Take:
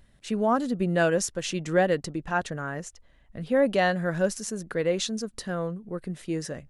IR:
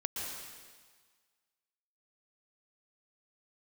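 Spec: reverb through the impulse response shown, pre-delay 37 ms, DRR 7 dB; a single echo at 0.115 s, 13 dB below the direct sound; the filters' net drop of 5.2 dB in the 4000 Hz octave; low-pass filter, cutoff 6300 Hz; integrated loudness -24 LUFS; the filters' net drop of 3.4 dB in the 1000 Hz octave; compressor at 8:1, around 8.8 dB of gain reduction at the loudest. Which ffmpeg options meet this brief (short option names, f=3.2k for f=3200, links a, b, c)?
-filter_complex "[0:a]lowpass=6.3k,equalizer=f=1k:t=o:g=-5,equalizer=f=4k:t=o:g=-6,acompressor=threshold=-27dB:ratio=8,aecho=1:1:115:0.224,asplit=2[a][b];[1:a]atrim=start_sample=2205,adelay=37[c];[b][c]afir=irnorm=-1:irlink=0,volume=-10dB[d];[a][d]amix=inputs=2:normalize=0,volume=8.5dB"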